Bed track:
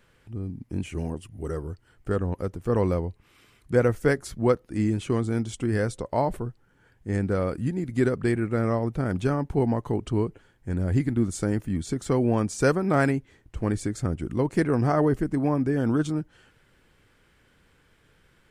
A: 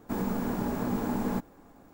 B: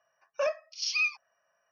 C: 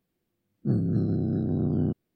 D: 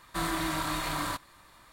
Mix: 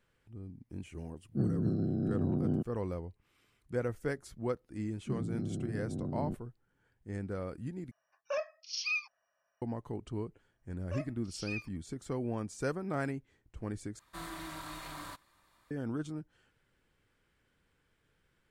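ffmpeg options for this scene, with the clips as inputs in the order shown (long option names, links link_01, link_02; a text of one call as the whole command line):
ffmpeg -i bed.wav -i cue0.wav -i cue1.wav -i cue2.wav -i cue3.wav -filter_complex "[3:a]asplit=2[link_01][link_02];[2:a]asplit=2[link_03][link_04];[0:a]volume=-13dB[link_05];[link_01]lowshelf=frequency=66:gain=-9.5[link_06];[link_03]acontrast=56[link_07];[link_05]asplit=3[link_08][link_09][link_10];[link_08]atrim=end=7.914[link_11];[link_07]atrim=end=1.71,asetpts=PTS-STARTPTS,volume=-12dB[link_12];[link_09]atrim=start=9.616:end=13.994[link_13];[4:a]atrim=end=1.72,asetpts=PTS-STARTPTS,volume=-12.5dB[link_14];[link_10]atrim=start=15.706[link_15];[link_06]atrim=end=2.15,asetpts=PTS-STARTPTS,volume=-4.5dB,afade=type=in:duration=0.004:curve=hsin,afade=type=out:start_time=2.146:duration=0.004:curve=hsin,adelay=700[link_16];[link_02]atrim=end=2.15,asetpts=PTS-STARTPTS,volume=-11.5dB,afade=type=in:duration=0.004:curve=hsin,afade=type=out:start_time=2.146:duration=0.004:curve=hsin,adelay=4420[link_17];[link_04]atrim=end=1.71,asetpts=PTS-STARTPTS,volume=-14dB,afade=type=in:duration=0.004:curve=hsin,afade=type=out:start_time=1.706:duration=0.004:curve=hsin,adelay=10520[link_18];[link_11][link_12]acrossfade=duration=0.004:curve1=hsin:curve2=hsin[link_19];[link_19][link_13]acrossfade=duration=0.004:curve1=hsin:curve2=hsin[link_20];[link_20][link_14]acrossfade=duration=0.004:curve1=hsin:curve2=hsin[link_21];[link_21][link_15]acrossfade=duration=0.004:curve1=hsin:curve2=hsin[link_22];[link_22][link_16][link_17][link_18]amix=inputs=4:normalize=0" out.wav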